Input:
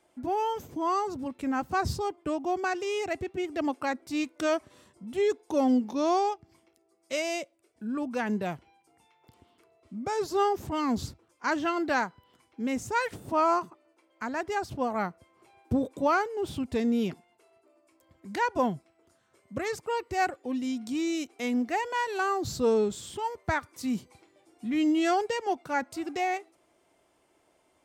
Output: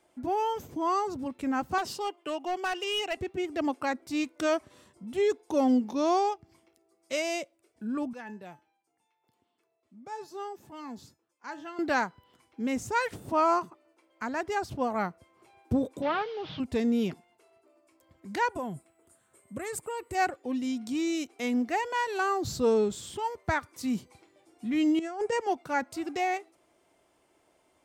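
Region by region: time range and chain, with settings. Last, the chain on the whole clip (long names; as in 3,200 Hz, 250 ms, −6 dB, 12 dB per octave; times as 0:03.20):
0:01.78–0:03.17: high-pass filter 430 Hz + parametric band 2,900 Hz +14.5 dB 0.2 octaves + hard clipping −25 dBFS
0:08.13–0:11.79: high-pass filter 150 Hz + tuned comb filter 860 Hz, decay 0.25 s, mix 80% + hum removal 314.4 Hz, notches 6
0:16.02–0:16.60: linear delta modulator 32 kbit/s, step −41 dBFS + loudspeaker in its box 130–4,200 Hz, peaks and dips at 240 Hz −8 dB, 340 Hz −10 dB, 3,100 Hz +4 dB + comb filter 6.4 ms, depth 34%
0:18.49–0:20.15: downward compressor 3 to 1, threshold −33 dBFS + high shelf with overshoot 6,900 Hz +7 dB, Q 3
0:24.99–0:25.41: parametric band 3,700 Hz −12 dB 0.92 octaves + compressor whose output falls as the input rises −30 dBFS, ratio −0.5 + Butterworth low-pass 11,000 Hz 96 dB per octave
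whole clip: no processing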